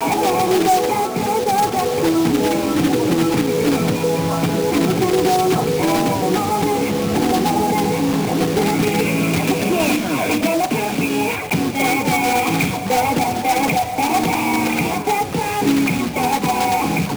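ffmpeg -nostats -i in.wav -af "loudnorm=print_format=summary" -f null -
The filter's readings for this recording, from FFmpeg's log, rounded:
Input Integrated:    -17.9 LUFS
Input True Peak:      -4.9 dBTP
Input LRA:             1.2 LU
Input Threshold:     -27.9 LUFS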